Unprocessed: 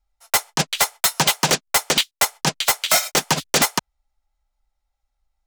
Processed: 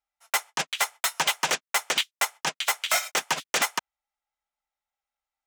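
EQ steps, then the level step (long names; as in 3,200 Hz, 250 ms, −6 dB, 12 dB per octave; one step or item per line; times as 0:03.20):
high-pass filter 1,500 Hz 6 dB per octave
parametric band 4,400 Hz −6 dB 0.62 octaves
high-shelf EQ 5,900 Hz −11.5 dB
0.0 dB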